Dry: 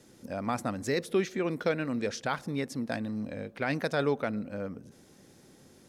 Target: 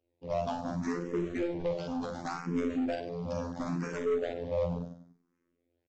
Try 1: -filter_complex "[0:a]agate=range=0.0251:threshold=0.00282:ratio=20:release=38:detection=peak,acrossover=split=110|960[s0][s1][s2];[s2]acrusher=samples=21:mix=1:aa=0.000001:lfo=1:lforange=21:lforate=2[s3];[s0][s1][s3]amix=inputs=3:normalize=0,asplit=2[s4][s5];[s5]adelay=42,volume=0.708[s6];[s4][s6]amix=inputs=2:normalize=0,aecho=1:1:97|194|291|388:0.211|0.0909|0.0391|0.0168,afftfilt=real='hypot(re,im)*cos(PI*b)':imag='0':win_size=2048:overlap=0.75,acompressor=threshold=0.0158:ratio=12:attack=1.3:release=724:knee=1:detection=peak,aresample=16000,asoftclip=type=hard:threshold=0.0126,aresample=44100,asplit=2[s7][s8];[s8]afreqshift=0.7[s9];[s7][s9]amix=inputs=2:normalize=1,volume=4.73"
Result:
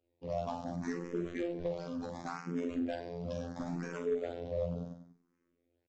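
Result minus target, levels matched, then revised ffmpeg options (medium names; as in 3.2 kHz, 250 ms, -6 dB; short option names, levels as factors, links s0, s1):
compression: peak gain reduction +6.5 dB
-filter_complex "[0:a]agate=range=0.0251:threshold=0.00282:ratio=20:release=38:detection=peak,acrossover=split=110|960[s0][s1][s2];[s2]acrusher=samples=21:mix=1:aa=0.000001:lfo=1:lforange=21:lforate=2[s3];[s0][s1][s3]amix=inputs=3:normalize=0,asplit=2[s4][s5];[s5]adelay=42,volume=0.708[s6];[s4][s6]amix=inputs=2:normalize=0,aecho=1:1:97|194|291|388:0.211|0.0909|0.0391|0.0168,afftfilt=real='hypot(re,im)*cos(PI*b)':imag='0':win_size=2048:overlap=0.75,acompressor=threshold=0.0355:ratio=12:attack=1.3:release=724:knee=1:detection=peak,aresample=16000,asoftclip=type=hard:threshold=0.0126,aresample=44100,asplit=2[s7][s8];[s8]afreqshift=0.7[s9];[s7][s9]amix=inputs=2:normalize=1,volume=4.73"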